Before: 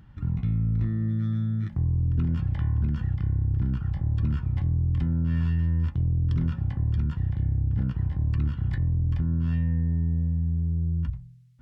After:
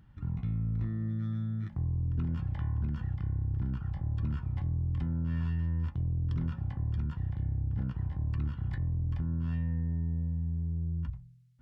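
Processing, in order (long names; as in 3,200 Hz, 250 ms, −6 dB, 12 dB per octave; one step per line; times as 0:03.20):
dynamic equaliser 870 Hz, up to +5 dB, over −53 dBFS, Q 1.1
level −7 dB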